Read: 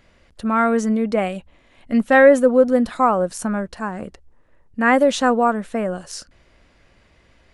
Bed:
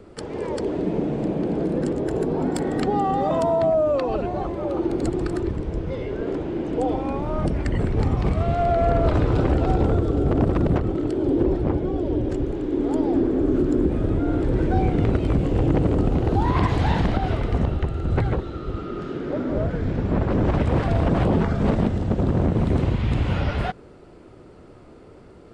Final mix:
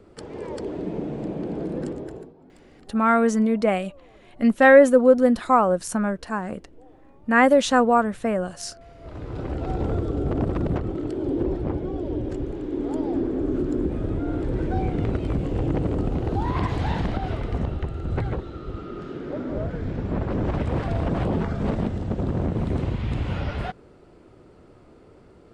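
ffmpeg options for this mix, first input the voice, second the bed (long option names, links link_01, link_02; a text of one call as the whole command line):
ffmpeg -i stem1.wav -i stem2.wav -filter_complex "[0:a]adelay=2500,volume=-1dB[link_01];[1:a]volume=18.5dB,afade=type=out:start_time=1.84:duration=0.49:silence=0.0707946,afade=type=in:start_time=8.98:duration=1.01:silence=0.0630957[link_02];[link_01][link_02]amix=inputs=2:normalize=0" out.wav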